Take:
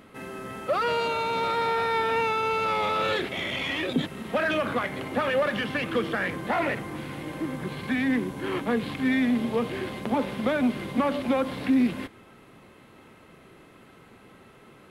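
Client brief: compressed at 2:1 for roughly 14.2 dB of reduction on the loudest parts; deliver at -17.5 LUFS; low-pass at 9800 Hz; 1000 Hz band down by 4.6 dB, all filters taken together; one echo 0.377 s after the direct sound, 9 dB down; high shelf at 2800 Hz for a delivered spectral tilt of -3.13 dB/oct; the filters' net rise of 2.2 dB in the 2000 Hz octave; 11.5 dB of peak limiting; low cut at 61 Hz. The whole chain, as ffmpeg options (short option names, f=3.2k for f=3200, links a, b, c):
-af "highpass=61,lowpass=9.8k,equalizer=f=1k:t=o:g=-8,equalizer=f=2k:t=o:g=3.5,highshelf=f=2.8k:g=3.5,acompressor=threshold=-46dB:ratio=2,alimiter=level_in=9dB:limit=-24dB:level=0:latency=1,volume=-9dB,aecho=1:1:377:0.355,volume=23.5dB"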